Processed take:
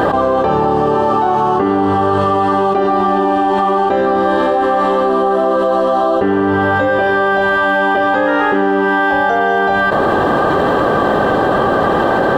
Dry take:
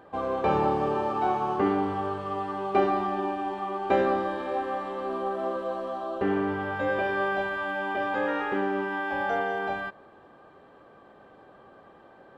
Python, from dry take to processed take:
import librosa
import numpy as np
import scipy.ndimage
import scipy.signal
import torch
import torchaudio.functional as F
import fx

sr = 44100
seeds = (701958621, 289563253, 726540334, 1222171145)

y = fx.peak_eq(x, sr, hz=2300.0, db=-12.0, octaves=0.21)
y = fx.env_flatten(y, sr, amount_pct=100)
y = y * librosa.db_to_amplitude(6.0)